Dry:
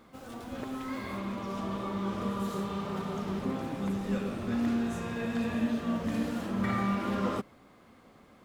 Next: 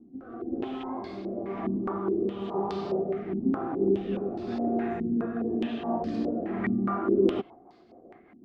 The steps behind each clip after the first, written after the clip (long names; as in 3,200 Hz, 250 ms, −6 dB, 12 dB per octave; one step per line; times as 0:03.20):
rotating-speaker cabinet horn 1 Hz, later 6 Hz, at 0:07.12
hollow resonant body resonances 360/710 Hz, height 17 dB, ringing for 35 ms
low-pass on a step sequencer 4.8 Hz 250–4,700 Hz
level −5 dB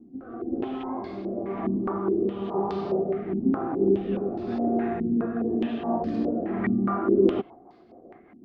high-shelf EQ 3,800 Hz −10.5 dB
level +3 dB